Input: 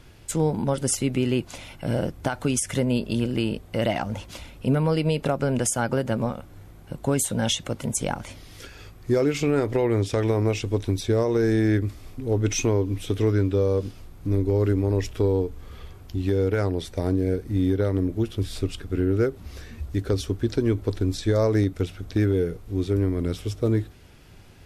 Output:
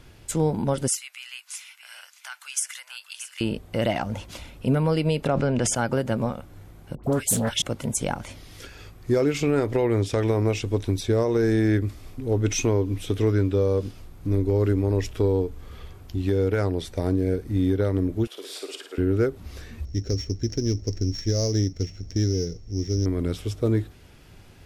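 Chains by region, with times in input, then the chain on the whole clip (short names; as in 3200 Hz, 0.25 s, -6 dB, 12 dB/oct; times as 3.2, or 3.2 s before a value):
0.88–3.41 Bessel high-pass 1900 Hz, order 6 + bell 3600 Hz -3.5 dB 0.41 oct + echo 0.628 s -12 dB
5.27–5.75 LPF 5600 Hz + sustainer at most 30 dB/s
6.95–7.62 high shelf 11000 Hz +11 dB + dispersion highs, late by 87 ms, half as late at 1200 Hz + Doppler distortion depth 0.3 ms
18.27–18.98 HPF 450 Hz 24 dB/oct + flutter echo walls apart 9.4 m, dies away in 0.56 s
19.85–23.06 sample sorter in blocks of 8 samples + EQ curve 130 Hz 0 dB, 620 Hz -7 dB, 970 Hz -14 dB, 1400 Hz -13 dB, 2000 Hz -4 dB, 3800 Hz -9 dB, 6100 Hz +5 dB, 9600 Hz -21 dB
whole clip: dry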